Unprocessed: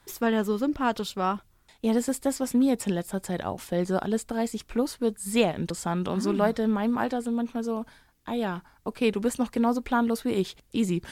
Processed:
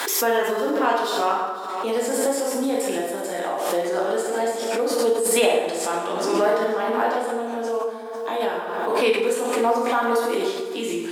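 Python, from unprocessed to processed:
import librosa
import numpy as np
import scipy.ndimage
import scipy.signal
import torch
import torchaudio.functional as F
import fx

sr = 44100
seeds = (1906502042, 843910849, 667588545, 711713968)

y = scipy.signal.sosfilt(scipy.signal.butter(4, 350.0, 'highpass', fs=sr, output='sos'), x)
y = y + 10.0 ** (-18.0 / 20.0) * np.pad(y, (int(499 * sr / 1000.0), 0))[:len(y)]
y = fx.rev_plate(y, sr, seeds[0], rt60_s=1.4, hf_ratio=0.65, predelay_ms=0, drr_db=-5.0)
y = fx.pre_swell(y, sr, db_per_s=31.0)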